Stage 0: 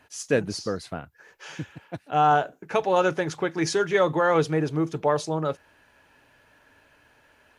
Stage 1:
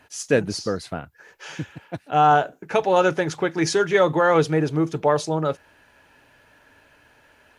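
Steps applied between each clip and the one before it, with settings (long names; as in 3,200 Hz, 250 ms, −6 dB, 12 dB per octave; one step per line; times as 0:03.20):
notch filter 1,100 Hz, Q 25
level +3.5 dB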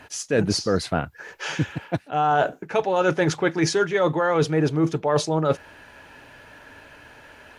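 high-shelf EQ 8,300 Hz −6 dB
reversed playback
downward compressor 12 to 1, threshold −26 dBFS, peak gain reduction 14.5 dB
reversed playback
level +9 dB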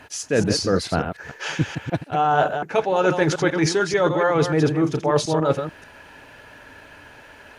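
delay that plays each chunk backwards 146 ms, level −7 dB
level +1 dB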